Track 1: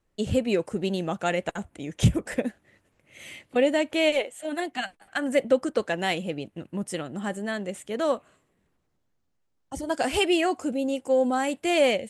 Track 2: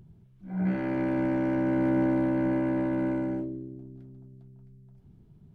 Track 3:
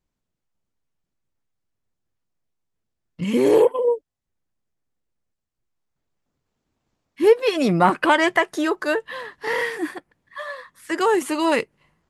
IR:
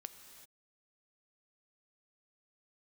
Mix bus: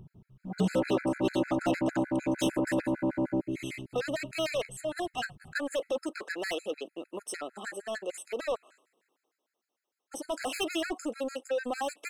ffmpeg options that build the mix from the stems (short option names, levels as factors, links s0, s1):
-filter_complex "[0:a]highpass=f=340:w=0.5412,highpass=f=340:w=1.3066,asoftclip=type=tanh:threshold=0.0355,adelay=400,volume=1.41[s0];[1:a]equalizer=f=730:w=0.6:g=4.5,alimiter=limit=0.0794:level=0:latency=1:release=96,volume=1.33[s1];[s0][s1]amix=inputs=2:normalize=0,afftfilt=real='re*gt(sin(2*PI*6.6*pts/sr)*(1-2*mod(floor(b*sr/1024/1300),2)),0)':imag='im*gt(sin(2*PI*6.6*pts/sr)*(1-2*mod(floor(b*sr/1024/1300),2)),0)':win_size=1024:overlap=0.75"